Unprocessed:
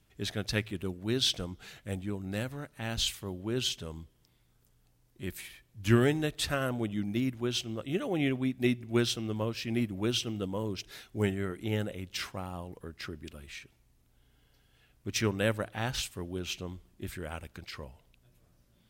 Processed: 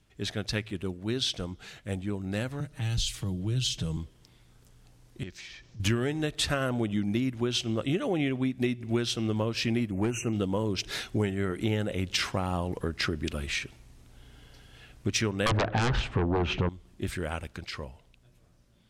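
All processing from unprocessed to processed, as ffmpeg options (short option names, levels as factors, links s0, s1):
-filter_complex "[0:a]asettb=1/sr,asplit=3[s0][s1][s2];[s0]atrim=end=2.604[s3];[s1]atrim=start=2.6:end=3.97,asetpts=PTS-STARTPTS,afade=t=in:d=0.004:c=qsin,afade=t=out:st=1.366:d=0.004:c=qsin,aecho=1:1:6.4:0.58,atrim=end_sample=60417,acrossover=split=160|3000[s4][s5][s6];[s5]acompressor=threshold=0.00282:ratio=3:attack=3.2:release=140:knee=2.83:detection=peak[s7];[s4][s7][s6]amix=inputs=3:normalize=0,lowshelf=f=290:g=7.5[s8];[s2]atrim=start=3.966[s9];[s3][s8]acrossfade=d=0.004:c1=hsin:c2=qsin[s10];[s10][s9]acrossfade=d=0.004:c1=qsin:c2=hsin,asettb=1/sr,asplit=3[s11][s12][s13];[s11]atrim=end=5.234[s14];[s12]atrim=start=5.23:end=5.8,asetpts=PTS-STARTPTS,afade=t=in:d=0.004:c=qsin,afade=t=out:st=0.566:d=0.004:c=qsin,acompressor=threshold=0.00112:ratio=2.5:attack=3.2:release=140:knee=1:detection=peak,acrusher=bits=8:mode=log:mix=0:aa=0.000001,highshelf=f=7800:t=q:w=3:g=-12[s15];[s13]atrim=start=5.796[s16];[s14][s15]acrossfade=d=0.004:c1=hsin:c2=qsin[s17];[s17][s16]acrossfade=d=0.004:c1=qsin:c2=hsin,asettb=1/sr,asplit=3[s18][s19][s20];[s18]atrim=end=9.914[s21];[s19]atrim=start=9.91:end=10.33,asetpts=PTS-STARTPTS,afade=t=in:d=0.004:c=qsin,afade=t=out:st=0.416:d=0.004:c=qsin,asuperstop=centerf=4100:order=20:qfactor=1.3,aeval=exprs='clip(val(0),-1,0.0398)':c=same[s22];[s20]atrim=start=10.326[s23];[s21][s22]acrossfade=d=0.004:c1=hsin:c2=qsin[s24];[s24][s23]acrossfade=d=0.004:c1=qsin:c2=hsin,asettb=1/sr,asplit=3[s25][s26][s27];[s25]atrim=end=15.464[s28];[s26]atrim=start=15.46:end=16.69,asetpts=PTS-STARTPTS,afade=t=in:d=0.004:c=qsin,afade=t=out:st=1.226:d=0.004:c=qsin,lowpass=1400,aeval=exprs='0.126*sin(PI/2*6.31*val(0)/0.126)':c=same[s29];[s27]atrim=start=16.686[s30];[s28][s29]acrossfade=d=0.004:c1=hsin:c2=qsin[s31];[s31][s30]acrossfade=d=0.004:c1=qsin:c2=hsin,dynaudnorm=f=720:g=11:m=5.01,lowpass=9500,acompressor=threshold=0.0447:ratio=8,volume=1.26"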